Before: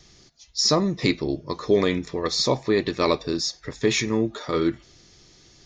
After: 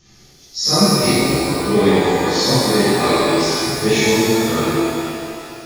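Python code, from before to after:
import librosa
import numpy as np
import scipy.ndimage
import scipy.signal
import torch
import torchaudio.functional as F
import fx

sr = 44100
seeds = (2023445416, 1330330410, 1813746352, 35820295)

y = fx.phase_scramble(x, sr, seeds[0], window_ms=100)
y = fx.rev_shimmer(y, sr, seeds[1], rt60_s=2.4, semitones=12, shimmer_db=-8, drr_db=-9.5)
y = F.gain(torch.from_numpy(y), -2.5).numpy()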